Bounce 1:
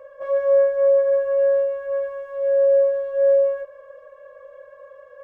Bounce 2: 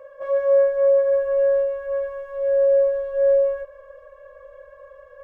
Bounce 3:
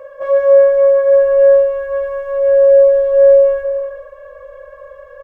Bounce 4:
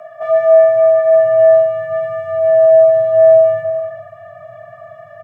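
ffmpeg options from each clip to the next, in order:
-af "asubboost=boost=11.5:cutoff=61"
-filter_complex "[0:a]asplit=2[s0][s1];[s1]adelay=373.2,volume=0.316,highshelf=f=4000:g=-8.4[s2];[s0][s2]amix=inputs=2:normalize=0,volume=2.66"
-af "afreqshift=95"

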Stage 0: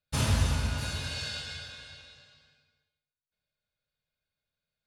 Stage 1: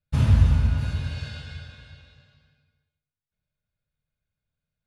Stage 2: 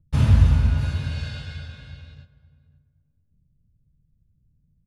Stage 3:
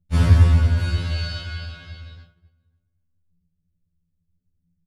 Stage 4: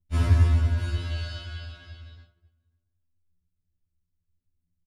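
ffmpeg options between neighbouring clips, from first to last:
-af "bass=f=250:g=12,treble=f=4000:g=-11,volume=0.794"
-filter_complex "[0:a]agate=range=0.112:threshold=0.002:ratio=16:detection=peak,acrossover=split=290|650|1700[s0][s1][s2][s3];[s0]acompressor=mode=upward:threshold=0.0178:ratio=2.5[s4];[s4][s1][s2][s3]amix=inputs=4:normalize=0,asplit=2[s5][s6];[s6]adelay=535,lowpass=f=940:p=1,volume=0.141,asplit=2[s7][s8];[s8]adelay=535,lowpass=f=940:p=1,volume=0.24[s9];[s5][s7][s9]amix=inputs=3:normalize=0,volume=1.26"
-filter_complex "[0:a]agate=range=0.316:threshold=0.00251:ratio=16:detection=peak,asplit=2[s0][s1];[s1]adelay=17,volume=0.562[s2];[s0][s2]amix=inputs=2:normalize=0,afftfilt=real='re*2*eq(mod(b,4),0)':imag='im*2*eq(mod(b,4),0)':win_size=2048:overlap=0.75,volume=1.88"
-af "aecho=1:1:3:0.6,volume=0.447"

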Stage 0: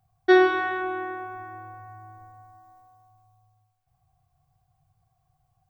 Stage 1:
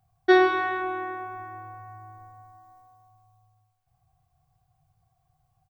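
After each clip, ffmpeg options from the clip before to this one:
-filter_complex "[0:a]asplit=2[s0][s1];[s1]adelay=26,volume=0.224[s2];[s0][s2]amix=inputs=2:normalize=0"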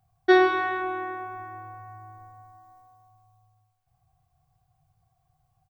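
-af anull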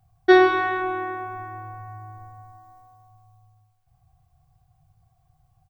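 -af "lowshelf=f=130:g=8,volume=1.41"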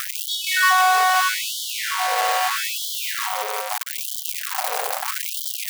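-af "aeval=exprs='val(0)+0.5*0.133*sgn(val(0))':c=same,aeval=exprs='val(0)+0.00708*(sin(2*PI*50*n/s)+sin(2*PI*2*50*n/s)/2+sin(2*PI*3*50*n/s)/3+sin(2*PI*4*50*n/s)/4+sin(2*PI*5*50*n/s)/5)':c=same,afftfilt=real='re*gte(b*sr/1024,390*pow(3000/390,0.5+0.5*sin(2*PI*0.78*pts/sr)))':imag='im*gte(b*sr/1024,390*pow(3000/390,0.5+0.5*sin(2*PI*0.78*pts/sr)))':win_size=1024:overlap=0.75,volume=1.78"

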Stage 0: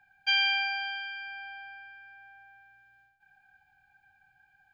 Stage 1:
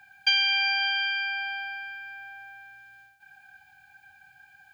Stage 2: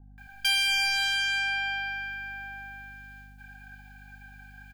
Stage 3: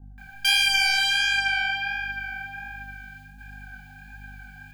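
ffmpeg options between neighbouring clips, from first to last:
-af "highpass=68,highshelf=f=2400:g=10.5,acompressor=threshold=0.0398:ratio=6,volume=2.24"
-filter_complex "[0:a]aeval=exprs='val(0)+0.00224*(sin(2*PI*50*n/s)+sin(2*PI*2*50*n/s)/2+sin(2*PI*3*50*n/s)/3+sin(2*PI*4*50*n/s)/4+sin(2*PI*5*50*n/s)/5)':c=same,asoftclip=type=tanh:threshold=0.0562,acrossover=split=540[s0][s1];[s1]adelay=180[s2];[s0][s2]amix=inputs=2:normalize=0,volume=1.5"
-af "flanger=delay=20:depth=7.6:speed=1.4,volume=2.37"

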